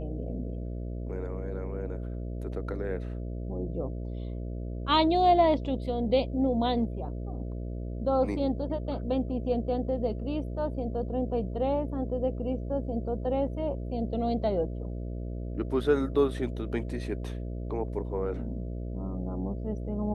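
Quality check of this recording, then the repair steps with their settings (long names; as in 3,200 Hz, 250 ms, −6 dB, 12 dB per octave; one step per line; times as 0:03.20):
mains buzz 60 Hz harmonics 11 −35 dBFS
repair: hum removal 60 Hz, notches 11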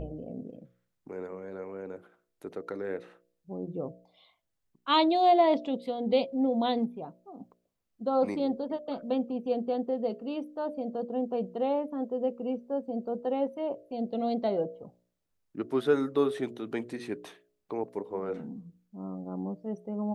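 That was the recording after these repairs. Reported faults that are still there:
none of them is left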